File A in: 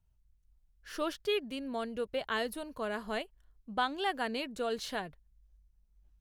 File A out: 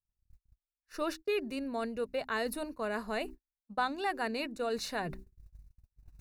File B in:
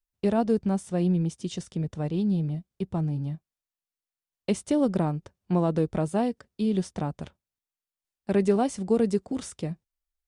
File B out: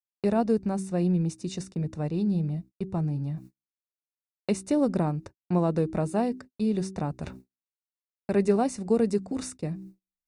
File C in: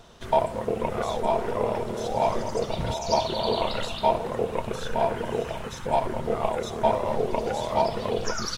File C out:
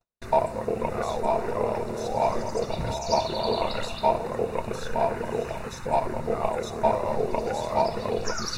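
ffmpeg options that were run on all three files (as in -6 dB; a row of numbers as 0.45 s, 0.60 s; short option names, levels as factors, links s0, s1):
-af "bandreject=f=63.63:t=h:w=4,bandreject=f=127.26:t=h:w=4,bandreject=f=190.89:t=h:w=4,bandreject=f=254.52:t=h:w=4,bandreject=f=318.15:t=h:w=4,bandreject=f=381.78:t=h:w=4,aeval=exprs='0.422*(cos(1*acos(clip(val(0)/0.422,-1,1)))-cos(1*PI/2))+0.00596*(cos(3*acos(clip(val(0)/0.422,-1,1)))-cos(3*PI/2))':c=same,areverse,acompressor=mode=upward:threshold=0.0316:ratio=2.5,areverse,agate=range=0.00501:threshold=0.00708:ratio=16:detection=peak,asuperstop=centerf=3200:order=4:qfactor=4.7"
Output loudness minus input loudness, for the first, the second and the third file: 0.0 LU, -0.5 LU, -0.5 LU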